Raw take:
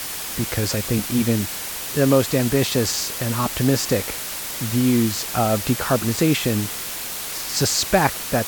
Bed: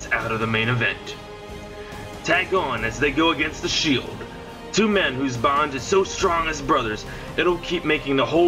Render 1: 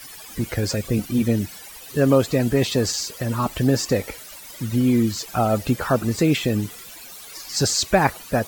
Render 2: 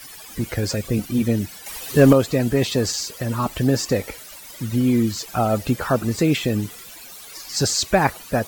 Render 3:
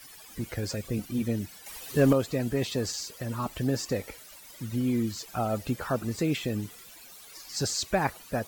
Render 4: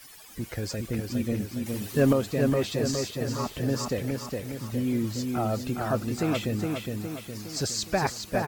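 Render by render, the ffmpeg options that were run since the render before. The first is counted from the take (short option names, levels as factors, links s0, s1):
-af "afftdn=nr=15:nf=-30"
-filter_complex "[0:a]asettb=1/sr,asplit=3[s0][s1][s2];[s0]atrim=end=1.664[s3];[s1]atrim=start=1.66:end=2.13,asetpts=PTS-STARTPTS,afade=t=in:d=0.004:c=qsin,afade=t=out:st=0.466:d=0.004:c=qsin,acontrast=84[s4];[s2]atrim=start=2.126[s5];[s3][s4]acrossfade=d=0.004:c1=hsin:c2=qsin[s6];[s6][s5]acrossfade=d=0.004:c1=qsin:c2=hsin"
-af "volume=0.355"
-filter_complex "[0:a]asplit=2[s0][s1];[s1]adelay=413,lowpass=f=4800:p=1,volume=0.668,asplit=2[s2][s3];[s3]adelay=413,lowpass=f=4800:p=1,volume=0.51,asplit=2[s4][s5];[s5]adelay=413,lowpass=f=4800:p=1,volume=0.51,asplit=2[s6][s7];[s7]adelay=413,lowpass=f=4800:p=1,volume=0.51,asplit=2[s8][s9];[s9]adelay=413,lowpass=f=4800:p=1,volume=0.51,asplit=2[s10][s11];[s11]adelay=413,lowpass=f=4800:p=1,volume=0.51,asplit=2[s12][s13];[s13]adelay=413,lowpass=f=4800:p=1,volume=0.51[s14];[s0][s2][s4][s6][s8][s10][s12][s14]amix=inputs=8:normalize=0"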